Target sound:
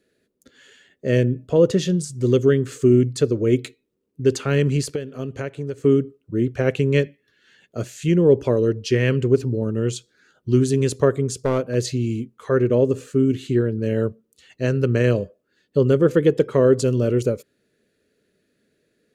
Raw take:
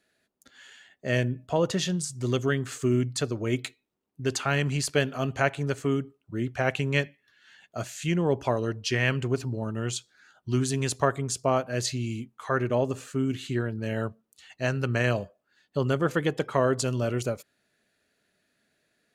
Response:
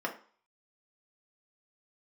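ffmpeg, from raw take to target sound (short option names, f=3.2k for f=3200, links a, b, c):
-filter_complex "[0:a]lowshelf=f=590:t=q:w=3:g=7,asettb=1/sr,asplit=3[a][b][c];[a]atrim=end=4.834[d];[b]atrim=start=4.83:end=5.84,asetpts=PTS-STARTPTS,afade=t=in:d=0.004:c=qsin,afade=t=out:st=1.006:d=0.004:c=qsin,acompressor=threshold=-25dB:ratio=6[e];[c]atrim=start=5.836[f];[d][e]acrossfade=d=0.004:c1=hsin:c2=qsin[g];[g][f]acrossfade=d=0.004:c1=qsin:c2=hsin,asettb=1/sr,asplit=3[h][i][j];[h]atrim=end=11.344[k];[i]atrim=start=11.34:end=11.75,asetpts=PTS-STARTPTS,afade=t=in:d=0.004:c=qsin,afade=t=out:st=0.406:d=0.004:c=qsin,asoftclip=type=hard:threshold=-15dB[l];[j]atrim=start=11.746[m];[k][l]acrossfade=d=0.004:c1=hsin:c2=qsin[n];[n][m]acrossfade=d=0.004:c1=qsin:c2=hsin"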